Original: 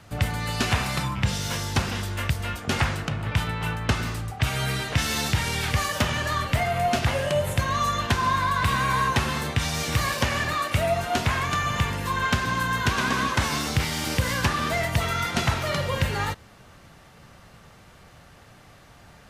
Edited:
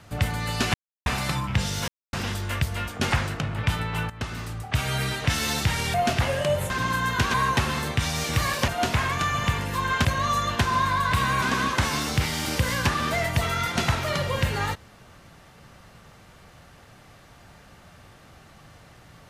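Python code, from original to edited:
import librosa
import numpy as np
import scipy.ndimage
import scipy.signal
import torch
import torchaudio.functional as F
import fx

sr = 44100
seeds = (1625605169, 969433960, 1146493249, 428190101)

y = fx.edit(x, sr, fx.insert_silence(at_s=0.74, length_s=0.32),
    fx.silence(start_s=1.56, length_s=0.25),
    fx.fade_in_from(start_s=3.78, length_s=0.92, curve='qsin', floor_db=-13.5),
    fx.cut(start_s=5.62, length_s=1.18),
    fx.swap(start_s=7.56, length_s=1.37, other_s=12.37, other_length_s=0.64),
    fx.cut(start_s=10.27, length_s=0.73), tone=tone)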